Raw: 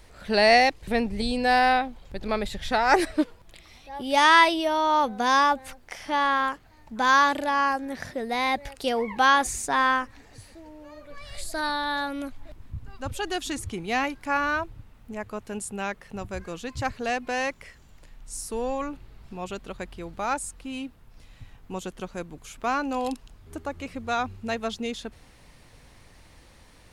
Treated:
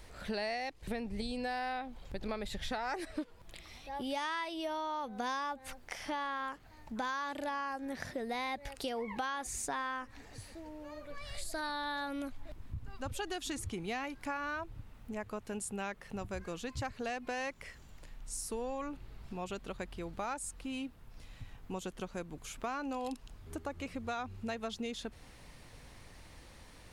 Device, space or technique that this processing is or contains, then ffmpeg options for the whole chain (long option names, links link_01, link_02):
serial compression, peaks first: -af "acompressor=threshold=-28dB:ratio=6,acompressor=threshold=-41dB:ratio=1.5,volume=-1.5dB"